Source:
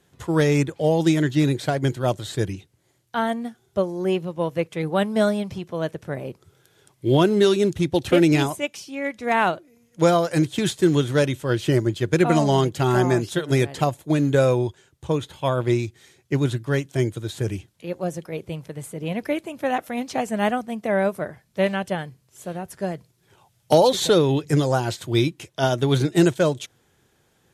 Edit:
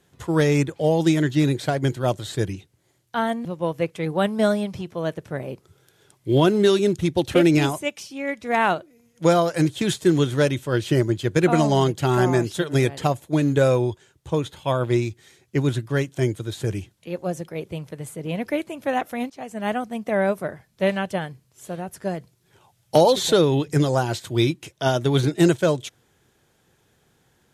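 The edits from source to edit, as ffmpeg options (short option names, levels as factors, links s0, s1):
-filter_complex "[0:a]asplit=3[s0][s1][s2];[s0]atrim=end=3.452[s3];[s1]atrim=start=4.218:end=20.07,asetpts=PTS-STARTPTS,afade=t=out:st=15.848:d=0.004:c=hsin:silence=0.11885[s4];[s2]atrim=start=20.07,asetpts=PTS-STARTPTS,afade=t=in:d=0.62:silence=0.11885[s5];[s4][s5]concat=n=2:v=0:a=1[s6];[s3][s6]acrossfade=d=0.004:c1=hsin:c2=hsin"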